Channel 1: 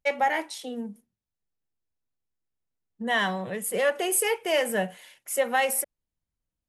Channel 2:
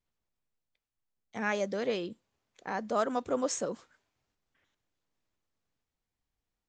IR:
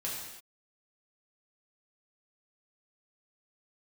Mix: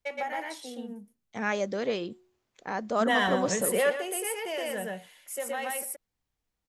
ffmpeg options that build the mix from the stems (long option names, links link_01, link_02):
-filter_complex "[0:a]acompressor=threshold=-25dB:ratio=2.5,volume=2dB,asplit=2[link_01][link_02];[link_02]volume=-10dB[link_03];[1:a]bandreject=frequency=365.2:width_type=h:width=4,bandreject=frequency=730.4:width_type=h:width=4,bandreject=frequency=1095.6:width_type=h:width=4,volume=2dB,asplit=2[link_04][link_05];[link_05]apad=whole_len=294783[link_06];[link_01][link_06]sidechaingate=range=-9dB:threshold=-59dB:ratio=16:detection=peak[link_07];[link_03]aecho=0:1:120:1[link_08];[link_07][link_04][link_08]amix=inputs=3:normalize=0"